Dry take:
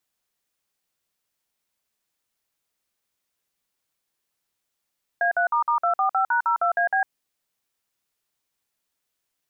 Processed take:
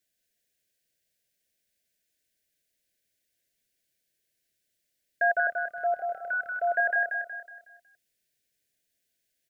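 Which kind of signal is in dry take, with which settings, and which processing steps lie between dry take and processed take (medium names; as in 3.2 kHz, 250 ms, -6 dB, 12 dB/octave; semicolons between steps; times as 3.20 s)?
DTMF "A3**245#02AB", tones 104 ms, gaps 52 ms, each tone -21 dBFS
Chebyshev band-stop 700–1500 Hz, order 5; feedback delay 184 ms, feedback 40%, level -5 dB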